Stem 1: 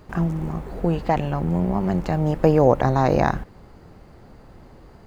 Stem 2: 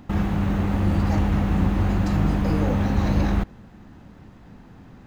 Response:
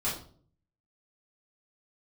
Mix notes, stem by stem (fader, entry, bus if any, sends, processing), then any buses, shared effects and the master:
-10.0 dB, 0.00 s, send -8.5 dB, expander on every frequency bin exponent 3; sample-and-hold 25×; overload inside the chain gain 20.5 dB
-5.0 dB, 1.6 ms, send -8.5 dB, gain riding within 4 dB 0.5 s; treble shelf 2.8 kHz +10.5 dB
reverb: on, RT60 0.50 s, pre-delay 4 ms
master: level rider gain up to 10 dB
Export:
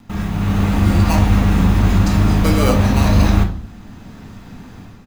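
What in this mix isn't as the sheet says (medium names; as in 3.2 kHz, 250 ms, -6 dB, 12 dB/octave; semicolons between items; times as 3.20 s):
stem 1: missing overload inside the chain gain 20.5 dB; stem 2: missing gain riding within 4 dB 0.5 s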